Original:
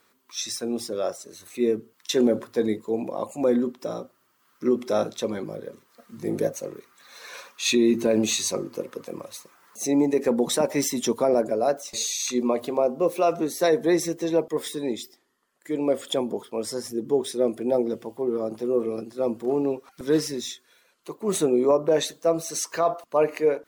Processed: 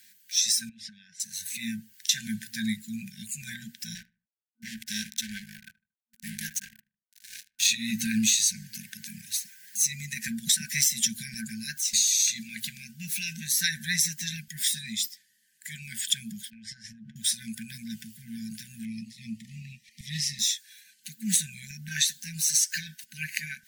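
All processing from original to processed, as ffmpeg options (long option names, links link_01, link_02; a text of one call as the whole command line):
ffmpeg -i in.wav -filter_complex "[0:a]asettb=1/sr,asplit=3[link_01][link_02][link_03];[link_01]atrim=end=0.694[link_04];[link_02]atrim=start=0.69:end=1.2,asetpts=PTS-STARTPTS,afade=type=in:duration=0.004:curve=qsin,afade=type=out:start_time=0.506:duration=0.004:curve=qsin,highpass=140,lowpass=2800,acompressor=threshold=-40dB:ratio=3:attack=3.2:release=140:knee=1:detection=peak[link_05];[link_03]atrim=start=1.196[link_06];[link_04][link_05]acrossfade=duration=0.004:curve1=hsin:curve2=qsin[link_07];[link_07][link_06]acrossfade=duration=0.004:curve1=qsin:curve2=hsin,asettb=1/sr,asplit=3[link_08][link_09][link_10];[link_08]atrim=end=3.954[link_11];[link_09]atrim=start=3.95:end=7.69,asetpts=PTS-STARTPTS,afade=type=in:duration=0.004:curve=qsin,afade=type=out:start_time=3.736:duration=0.004:curve=qsin,highpass=220,aeval=exprs='sgn(val(0))*max(abs(val(0))-0.0119,0)':channel_layout=same,asplit=2[link_12][link_13];[link_13]adelay=76,lowpass=frequency=1500:poles=1,volume=-19dB,asplit=2[link_14][link_15];[link_15]adelay=76,lowpass=frequency=1500:poles=1,volume=0.33,asplit=2[link_16][link_17];[link_17]adelay=76,lowpass=frequency=1500:poles=1,volume=0.33[link_18];[link_12][link_14][link_16][link_18]amix=inputs=4:normalize=0,atrim=end_sample=164934[link_19];[link_10]atrim=start=7.686[link_20];[link_11][link_19]acrossfade=duration=0.004:curve1=hsin:curve2=qsin[link_21];[link_21][link_20]acrossfade=duration=0.004:curve1=qsin:curve2=hsin,asettb=1/sr,asplit=3[link_22][link_23][link_24];[link_22]atrim=end=16.504[link_25];[link_23]atrim=start=16.5:end=17.16,asetpts=PTS-STARTPTS,afade=type=in:duration=0.004:curve=qsin,afade=type=out:start_time=0.656:duration=0.004:curve=qsin,lowpass=2400,acompressor=threshold=-35dB:ratio=12:attack=3.2:release=140:knee=1:detection=peak[link_26];[link_24]atrim=start=17.156[link_27];[link_25][link_26]acrossfade=duration=0.004:curve1=hsin:curve2=qsin[link_28];[link_28][link_27]acrossfade=duration=0.004:curve1=qsin:curve2=hsin,asettb=1/sr,asplit=3[link_29][link_30][link_31];[link_29]atrim=end=18.854[link_32];[link_30]atrim=start=18.85:end=20.39,asetpts=PTS-STARTPTS,afade=type=in:duration=0.004:curve=qsin,afade=type=out:start_time=1.536:duration=0.004:curve=qsin,asuperstop=centerf=1300:order=20:qfactor=1.5,aemphasis=mode=reproduction:type=50fm[link_33];[link_31]atrim=start=20.386[link_34];[link_32][link_33]acrossfade=duration=0.004:curve1=hsin:curve2=qsin[link_35];[link_35][link_34]acrossfade=duration=0.004:curve1=qsin:curve2=hsin,afftfilt=real='re*(1-between(b*sr/4096,230,1500))':imag='im*(1-between(b*sr/4096,230,1500))':win_size=4096:overlap=0.75,bass=frequency=250:gain=-7,treble=frequency=4000:gain=7,acompressor=threshold=-25dB:ratio=6,volume=5dB" out.wav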